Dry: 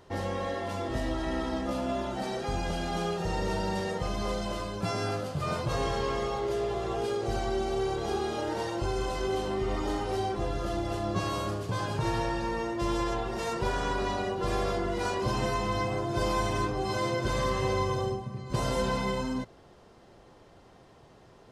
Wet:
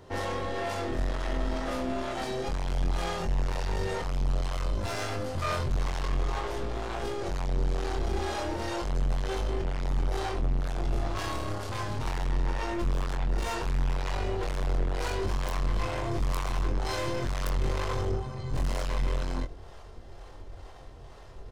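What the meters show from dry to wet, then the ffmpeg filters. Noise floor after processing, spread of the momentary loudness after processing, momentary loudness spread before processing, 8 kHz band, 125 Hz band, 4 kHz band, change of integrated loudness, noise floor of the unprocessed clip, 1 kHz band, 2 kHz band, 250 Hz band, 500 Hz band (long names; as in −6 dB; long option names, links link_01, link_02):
−46 dBFS, 4 LU, 4 LU, −1.0 dB, +1.5 dB, −2.0 dB, −1.0 dB, −55 dBFS, −3.5 dB, −1.0 dB, −4.0 dB, −4.5 dB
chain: -filter_complex "[0:a]asubboost=boost=10.5:cutoff=56,aeval=exprs='(tanh(56.2*val(0)+0.4)-tanh(0.4))/56.2':channel_layout=same,bandreject=frequency=60:width_type=h:width=6,bandreject=frequency=120:width_type=h:width=6,bandreject=frequency=180:width_type=h:width=6,bandreject=frequency=240:width_type=h:width=6,bandreject=frequency=300:width_type=h:width=6,acrossover=split=460[link_01][link_02];[link_01]aeval=exprs='val(0)*(1-0.5/2+0.5/2*cos(2*PI*2.1*n/s))':channel_layout=same[link_03];[link_02]aeval=exprs='val(0)*(1-0.5/2-0.5/2*cos(2*PI*2.1*n/s))':channel_layout=same[link_04];[link_03][link_04]amix=inputs=2:normalize=0,aeval=exprs='(mod(23.7*val(0)+1,2)-1)/23.7':channel_layout=same,asplit=2[link_05][link_06];[link_06]adelay=23,volume=-5dB[link_07];[link_05][link_07]amix=inputs=2:normalize=0,volume=7.5dB"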